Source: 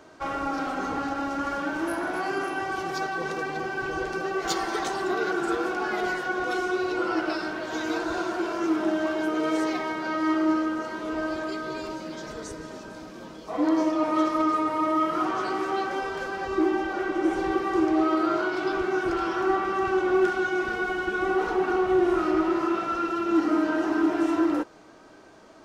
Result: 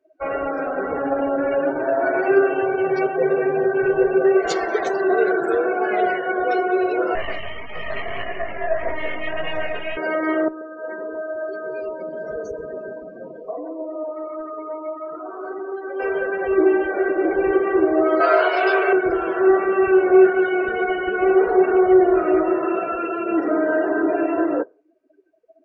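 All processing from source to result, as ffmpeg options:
ffmpeg -i in.wav -filter_complex "[0:a]asettb=1/sr,asplit=3[link_01][link_02][link_03];[link_01]atrim=end=1.024[link_04];[link_02]atrim=start=1.02:end=4.37,asetpts=PTS-STARTPTS,afade=type=in:duration=0.004:curve=qsin,afade=type=out:start_time=3.346:duration=0.004:curve=qsin,highshelf=frequency=6800:gain=-7.5,aecho=1:1:7.5:0.94,atrim=end_sample=147735,adynamicsmooth=sensitivity=6.5:basefreq=1500[link_05];[link_03]atrim=start=4.366[link_06];[link_04][link_05]acrossfade=duration=0.004:curve1=hsin:curve2=qsin[link_07];[link_07][link_06]acrossfade=duration=0.004:curve1=qsin:curve2=hsin,asettb=1/sr,asplit=3[link_08][link_09][link_10];[link_08]atrim=end=7.154[link_11];[link_09]atrim=start=7.15:end=9.97,asetpts=PTS-STARTPTS,afade=type=in:duration=0.004:curve=qsin,afade=type=out:start_time=2.816:duration=0.004:curve=qsin,equalizer=frequency=1600:width_type=o:width=0.32:gain=7.5,aeval=exprs='abs(val(0))':channel_layout=same,flanger=delay=18:depth=5.1:speed=1.7[link_12];[link_10]atrim=start=9.966[link_13];[link_11][link_12]acrossfade=duration=0.004:curve1=hsin:curve2=qsin[link_14];[link_14][link_13]acrossfade=duration=0.004:curve1=qsin:curve2=hsin,asettb=1/sr,asplit=3[link_15][link_16][link_17];[link_15]atrim=end=10.484[link_18];[link_16]atrim=start=10.48:end=16,asetpts=PTS-STARTPTS,afade=type=in:duration=0.004:curve=qsin,afade=type=out:start_time=5.516:duration=0.004:curve=qsin,asoftclip=type=hard:threshold=-19dB,acompressor=threshold=-33dB:ratio=10:attack=3.2:release=140:knee=1:detection=peak,aecho=1:1:132:0.398,atrim=end_sample=243432[link_19];[link_17]atrim=start=15.996[link_20];[link_18][link_19]acrossfade=duration=0.004:curve1=hsin:curve2=qsin[link_21];[link_21][link_20]acrossfade=duration=0.004:curve1=qsin:curve2=hsin,asettb=1/sr,asplit=3[link_22][link_23][link_24];[link_22]atrim=end=18.204[link_25];[link_23]atrim=start=18.2:end=18.93,asetpts=PTS-STARTPTS,afade=type=in:duration=0.004:curve=qsin,afade=type=out:start_time=0.726:duration=0.004:curve=qsin,highpass=frequency=480:width=0.5412,highpass=frequency=480:width=1.3066,aecho=1:1:7.1:0.39,atrim=end_sample=32193,acontrast=63[link_26];[link_24]atrim=start=18.926[link_27];[link_25][link_26]acrossfade=duration=0.004:curve1=hsin:curve2=qsin[link_28];[link_28][link_27]acrossfade=duration=0.004:curve1=qsin:curve2=hsin,afftdn=noise_reduction=35:noise_floor=-36,superequalizer=7b=3.55:8b=3.55:11b=2:12b=2.51,volume=1dB" out.wav

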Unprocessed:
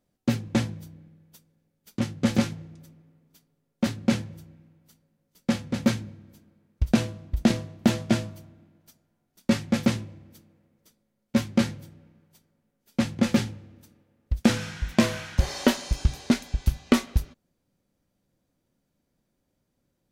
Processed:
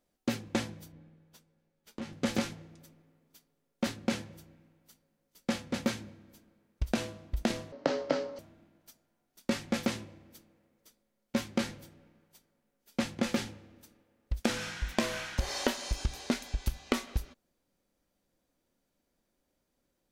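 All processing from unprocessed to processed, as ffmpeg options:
ffmpeg -i in.wav -filter_complex "[0:a]asettb=1/sr,asplit=3[link_01][link_02][link_03];[link_01]atrim=end=0.924[link_04];[link_02]atrim=start=0.92:end=2.13,asetpts=PTS-STARTPTS,afade=type=in:duration=0.004:curve=qsin,afade=type=out:start_time=1.206:duration=0.004:curve=qsin,lowpass=frequency=3500:poles=1,acompressor=threshold=-33dB:ratio=3:attack=3.2:release=140:knee=1:detection=peak,asplit=2[link_05][link_06];[link_06]adelay=13,volume=-5dB[link_07];[link_05][link_07]amix=inputs=2:normalize=0,atrim=end_sample=53361[link_08];[link_03]atrim=start=2.126[link_09];[link_04][link_08]acrossfade=duration=0.004:curve1=hsin:curve2=qsin[link_10];[link_10][link_09]acrossfade=duration=0.004:curve1=qsin:curve2=hsin,asettb=1/sr,asplit=3[link_11][link_12][link_13];[link_11]atrim=end=7.724[link_14];[link_12]atrim=start=7.72:end=8.39,asetpts=PTS-STARTPTS,afade=type=in:duration=0.004:curve=qsin,afade=type=out:start_time=0.666:duration=0.004:curve=qsin,acontrast=39,afreqshift=-80,highpass=280,equalizer=frequency=290:width_type=q:width=4:gain=10,equalizer=frequency=560:width_type=q:width=4:gain=8,equalizer=frequency=1700:width_type=q:width=4:gain=-3,equalizer=frequency=2500:width_type=q:width=4:gain=-8,equalizer=frequency=3500:width_type=q:width=4:gain=-9,lowpass=frequency=5000:width=0.5412,lowpass=frequency=5000:width=1.3066[link_15];[link_13]atrim=start=8.386[link_16];[link_14][link_15]acrossfade=duration=0.004:curve1=hsin:curve2=qsin[link_17];[link_17][link_16]acrossfade=duration=0.004:curve1=qsin:curve2=hsin,equalizer=frequency=120:width=0.77:gain=-11.5,acompressor=threshold=-25dB:ratio=6" out.wav

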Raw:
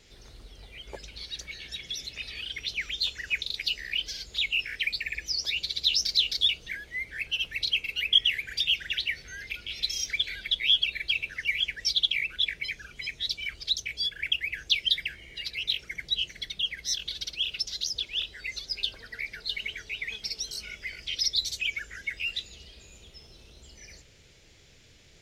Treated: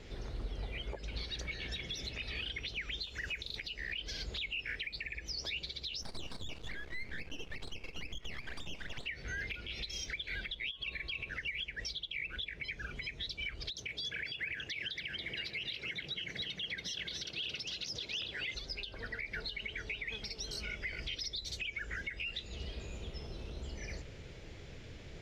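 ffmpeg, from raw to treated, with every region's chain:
ffmpeg -i in.wav -filter_complex "[0:a]asettb=1/sr,asplit=3[link_01][link_02][link_03];[link_01]atrim=end=3.054[link_04];[link_02]atrim=start=3.05:end=3.56,asetpts=PTS-STARTPTS,afade=type=in:duration=0.004:curve=qsin,afade=type=out:start_time=0.506:duration=0.004:curve=qsin,highshelf=frequency=8900:gain=12,acompressor=threshold=-37dB:ratio=2:attack=3.2:release=140:knee=1:detection=peak[link_05];[link_03]atrim=start=3.556[link_06];[link_04][link_05]acrossfade=duration=0.004:curve1=hsin:curve2=qsin[link_07];[link_07][link_06]acrossfade=duration=0.004:curve1=qsin:curve2=hsin,asettb=1/sr,asplit=3[link_08][link_09][link_10];[link_08]atrim=end=6.024[link_11];[link_09]atrim=start=6.02:end=9.06,asetpts=PTS-STARTPTS,afade=type=in:duration=0.004:curve=qsin,afade=type=out:start_time=3.036:duration=0.004:curve=qsin,aecho=1:1:213:0.0708,atrim=end_sample=134064,acompressor=threshold=-34dB:ratio=3:attack=3.2:release=140:knee=1:detection=peak,aeval=exprs='max(val(0),0)':channel_layout=same[link_12];[link_10]atrim=start=9.056[link_13];[link_11][link_12]acrossfade=duration=0.004:curve1=hsin:curve2=qsin[link_14];[link_14][link_13]acrossfade=duration=0.004:curve1=qsin:curve2=hsin,asettb=1/sr,asplit=3[link_15][link_16][link_17];[link_15]atrim=end=10.714[link_18];[link_16]atrim=start=10.71:end=11.29,asetpts=PTS-STARTPTS,afade=type=in:duration=0.004:curve=qsin,afade=type=out:start_time=0.576:duration=0.004:curve=qsin,acompressor=threshold=-29dB:ratio=6:attack=3.2:release=140:knee=1:detection=peak,aeval=exprs='val(0)+0.000562*sin(2*PI*1100*n/s)':channel_layout=same[link_19];[link_17]atrim=start=11.286[link_20];[link_18][link_19]acrossfade=duration=0.004:curve1=hsin:curve2=qsin[link_21];[link_21][link_20]acrossfade=duration=0.004:curve1=qsin:curve2=hsin,asettb=1/sr,asplit=3[link_22][link_23][link_24];[link_22]atrim=end=13.704[link_25];[link_23]atrim=start=13.7:end=18.55,asetpts=PTS-STARTPTS,afade=type=in:duration=0.004:curve=qsin,afade=type=out:start_time=4.846:duration=0.004:curve=qsin,highpass=110,acompressor=threshold=-30dB:ratio=5:attack=3.2:release=140:knee=1:detection=peak,aecho=1:1:281:0.531,atrim=end_sample=213885[link_26];[link_24]atrim=start=18.546[link_27];[link_25][link_26]acrossfade=duration=0.004:curve1=hsin:curve2=qsin[link_28];[link_28][link_27]acrossfade=duration=0.004:curve1=qsin:curve2=hsin,lowpass=frequency=1200:poles=1,acompressor=threshold=-39dB:ratio=6,alimiter=level_in=16.5dB:limit=-24dB:level=0:latency=1:release=266,volume=-16.5dB,volume=10dB" out.wav

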